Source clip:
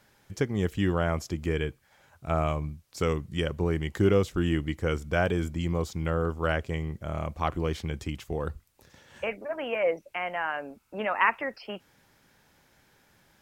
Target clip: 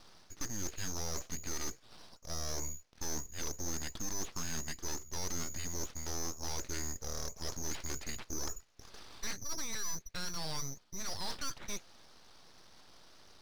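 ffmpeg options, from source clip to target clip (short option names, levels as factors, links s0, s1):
-af "lowshelf=f=370:t=q:w=1.5:g=-8,areverse,acompressor=threshold=0.0158:ratio=6,areverse,asoftclip=type=tanh:threshold=0.0106,lowpass=f=3000:t=q:w=0.5098,lowpass=f=3000:t=q:w=0.6013,lowpass=f=3000:t=q:w=0.9,lowpass=f=3000:t=q:w=2.563,afreqshift=-3500,aeval=exprs='abs(val(0))':c=same,volume=2.66"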